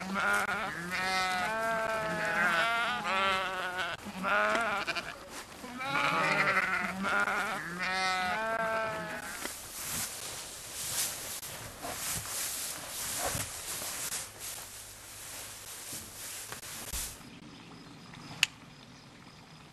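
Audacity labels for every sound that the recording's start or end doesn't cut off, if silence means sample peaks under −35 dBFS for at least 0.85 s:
18.140000	18.460000	sound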